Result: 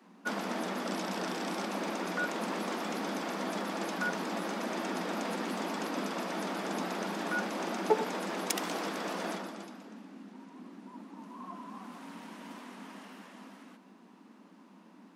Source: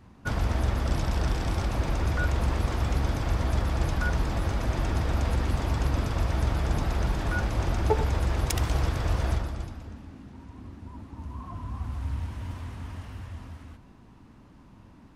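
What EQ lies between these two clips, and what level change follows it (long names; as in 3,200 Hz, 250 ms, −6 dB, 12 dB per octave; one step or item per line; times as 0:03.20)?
Butterworth high-pass 180 Hz 96 dB per octave
−1.0 dB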